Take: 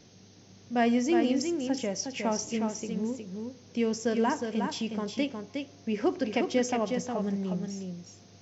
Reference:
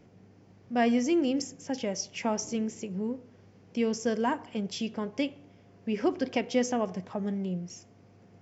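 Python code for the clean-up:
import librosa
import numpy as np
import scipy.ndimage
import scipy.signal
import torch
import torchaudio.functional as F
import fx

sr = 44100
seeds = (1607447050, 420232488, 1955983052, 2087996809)

y = fx.noise_reduce(x, sr, print_start_s=0.0, print_end_s=0.5, reduce_db=6.0)
y = fx.fix_echo_inverse(y, sr, delay_ms=362, level_db=-5.5)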